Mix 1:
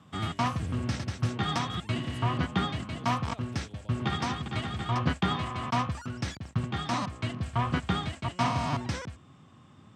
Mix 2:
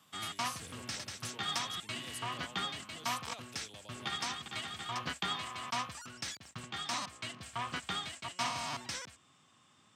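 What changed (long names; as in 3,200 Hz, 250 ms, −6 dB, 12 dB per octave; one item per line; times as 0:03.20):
background −7.5 dB
master: add spectral tilt +4 dB per octave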